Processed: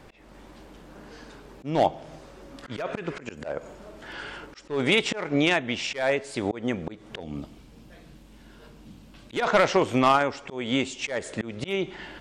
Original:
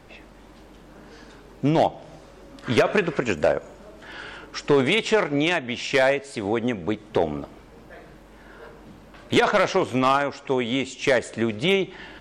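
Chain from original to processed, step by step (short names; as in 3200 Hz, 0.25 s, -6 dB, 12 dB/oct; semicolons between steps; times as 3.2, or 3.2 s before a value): 7.2–9.33 band shelf 870 Hz -9.5 dB 2.8 oct; auto swell 0.234 s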